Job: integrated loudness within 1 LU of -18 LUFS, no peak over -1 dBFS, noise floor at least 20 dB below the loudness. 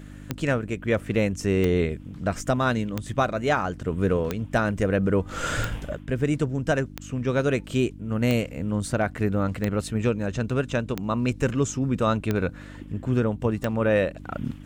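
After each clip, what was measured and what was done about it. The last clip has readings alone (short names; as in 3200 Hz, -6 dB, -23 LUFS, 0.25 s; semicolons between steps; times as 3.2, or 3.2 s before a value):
clicks 11; hum 50 Hz; harmonics up to 300 Hz; hum level -41 dBFS; loudness -26.0 LUFS; peak -9.5 dBFS; loudness target -18.0 LUFS
-> de-click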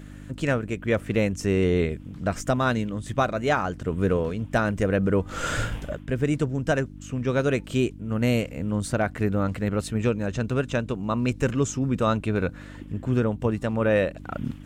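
clicks 0; hum 50 Hz; harmonics up to 300 Hz; hum level -41 dBFS
-> de-hum 50 Hz, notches 6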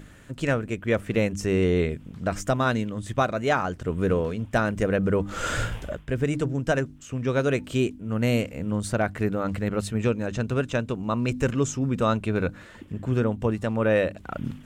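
hum none; loudness -26.0 LUFS; peak -10.0 dBFS; loudness target -18.0 LUFS
-> gain +8 dB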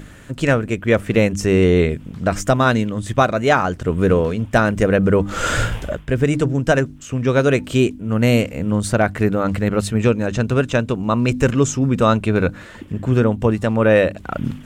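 loudness -18.0 LUFS; peak -2.0 dBFS; noise floor -39 dBFS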